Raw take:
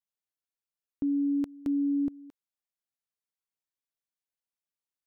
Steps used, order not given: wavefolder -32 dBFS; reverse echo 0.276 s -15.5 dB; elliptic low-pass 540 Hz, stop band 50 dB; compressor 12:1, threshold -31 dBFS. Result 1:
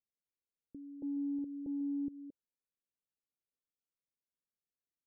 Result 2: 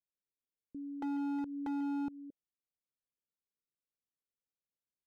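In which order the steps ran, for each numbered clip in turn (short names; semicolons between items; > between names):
compressor > reverse echo > wavefolder > elliptic low-pass; reverse echo > compressor > elliptic low-pass > wavefolder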